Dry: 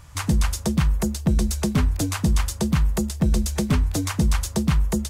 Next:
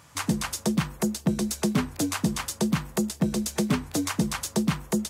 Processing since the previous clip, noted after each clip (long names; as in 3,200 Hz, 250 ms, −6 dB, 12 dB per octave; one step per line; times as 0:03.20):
Chebyshev high-pass filter 210 Hz, order 2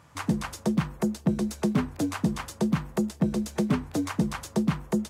high-shelf EQ 2,700 Hz −11 dB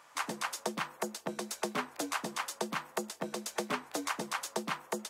high-pass filter 630 Hz 12 dB per octave
level +1 dB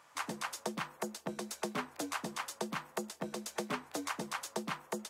parametric band 75 Hz +8 dB 2.4 octaves
level −3.5 dB